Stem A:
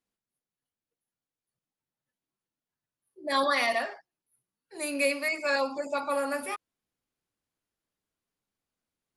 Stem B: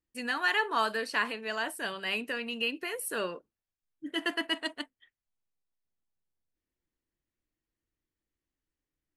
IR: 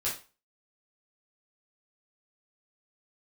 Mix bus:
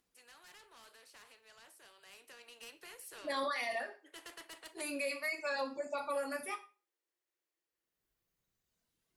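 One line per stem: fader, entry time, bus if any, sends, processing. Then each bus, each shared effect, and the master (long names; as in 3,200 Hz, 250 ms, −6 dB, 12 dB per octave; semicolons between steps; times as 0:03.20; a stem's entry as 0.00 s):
−8.0 dB, 0.00 s, send −8.5 dB, noise gate −43 dBFS, range −38 dB; reverb reduction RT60 1.5 s; upward compression, threshold −42 dBFS
0:01.94 −21 dB → 0:02.63 −12.5 dB, 0.00 s, send −15.5 dB, Butterworth high-pass 350 Hz 48 dB per octave; soft clipping −26 dBFS, distortion −12 dB; every bin compressed towards the loudest bin 2 to 1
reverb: on, RT60 0.35 s, pre-delay 5 ms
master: brickwall limiter −28 dBFS, peak gain reduction 8 dB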